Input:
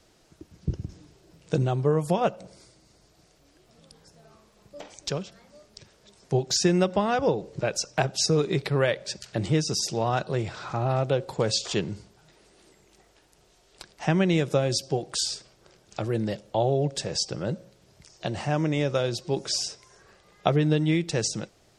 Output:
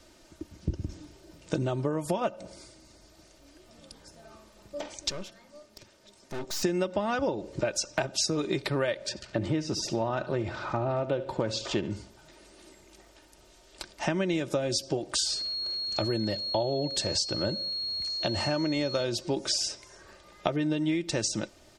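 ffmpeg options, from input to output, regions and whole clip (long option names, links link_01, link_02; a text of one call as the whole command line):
ffmpeg -i in.wav -filter_complex "[0:a]asettb=1/sr,asplit=3[link_01][link_02][link_03];[link_01]atrim=end=5.104[link_04];[link_02]atrim=start=5.1:end=6.63,asetpts=PTS-STARTPTS,afade=type=in:duration=0.004:curve=qsin,afade=type=out:start_time=1.526:duration=0.004:curve=qsin,highpass=87,aeval=exprs='(tanh(70.8*val(0)+0.75)-tanh(0.75))/70.8':channel_layout=same[link_05];[link_03]atrim=start=6.626[link_06];[link_04][link_05]acrossfade=duration=0.004:curve1=hsin:curve2=qsin[link_07];[link_07][link_06]acrossfade=duration=0.004:curve1=qsin:curve2=hsin,asettb=1/sr,asplit=3[link_08][link_09][link_10];[link_08]atrim=end=9.094[link_11];[link_09]atrim=start=9.09:end=11.91,asetpts=PTS-STARTPTS,afade=type=in:duration=0.004:curve=qsin,afade=type=out:start_time=2.816:duration=0.004:curve=qsin,aemphasis=mode=reproduction:type=75kf,aecho=1:1:71|142|213:0.158|0.0618|0.0241,atrim=end_sample=124362[link_12];[link_10]atrim=start=11.906[link_13];[link_11][link_12]acrossfade=duration=0.004:curve1=hsin:curve2=qsin[link_14];[link_14][link_13]acrossfade=duration=0.004:curve1=qsin:curve2=hsin,asettb=1/sr,asplit=3[link_15][link_16][link_17];[link_15]atrim=end=15.254[link_18];[link_16]atrim=start=15.25:end=19.04,asetpts=PTS-STARTPTS,afade=type=in:duration=0.004:curve=qsin,afade=type=out:start_time=3.786:duration=0.004:curve=qsin,equalizer=frequency=95:width=7.4:gain=6,aeval=exprs='val(0)+0.0158*sin(2*PI*4300*n/s)':channel_layout=same[link_19];[link_17]atrim=start=19.036[link_20];[link_18][link_19]acrossfade=duration=0.004:curve1=hsin:curve2=qsin[link_21];[link_21][link_20]acrossfade=duration=0.004:curve1=qsin:curve2=hsin,aecho=1:1:3.3:0.52,acompressor=threshold=-28dB:ratio=6,volume=3dB" out.wav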